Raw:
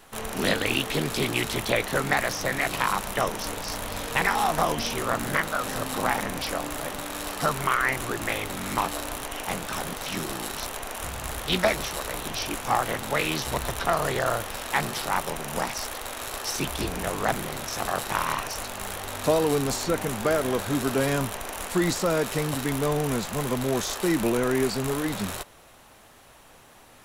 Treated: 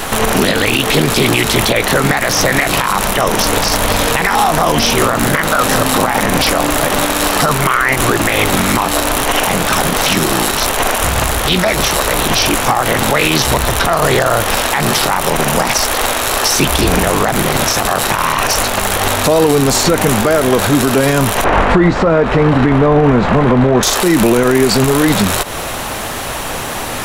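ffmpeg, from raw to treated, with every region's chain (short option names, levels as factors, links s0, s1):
-filter_complex "[0:a]asettb=1/sr,asplit=3[s0][s1][s2];[s0]atrim=end=21.444[s3];[s1]atrim=start=21.44:end=23.83,asetpts=PTS-STARTPTS,afade=t=in:d=0.004:c=qsin,afade=t=out:st=2.386:d=0.004:c=qsin,lowpass=1800,aeval=exprs='val(0)+0.00501*(sin(2*PI*50*n/s)+sin(2*PI*2*50*n/s)/2+sin(2*PI*3*50*n/s)/3+sin(2*PI*4*50*n/s)/4+sin(2*PI*5*50*n/s)/5)':c=same,asplit=2[s4][s5];[s5]adelay=24,volume=0.224[s6];[s4][s6]amix=inputs=2:normalize=0,atrim=end_sample=105399[s7];[s2]atrim=start=23.826[s8];[s3][s7]acrossfade=d=0.004:c1=hsin:c2=qsin[s9];[s9][s8]acrossfade=d=0.004:c1=qsin:c2=hsin,acompressor=threshold=0.0158:ratio=6,alimiter=level_in=39.8:limit=0.891:release=50:level=0:latency=1,volume=0.891"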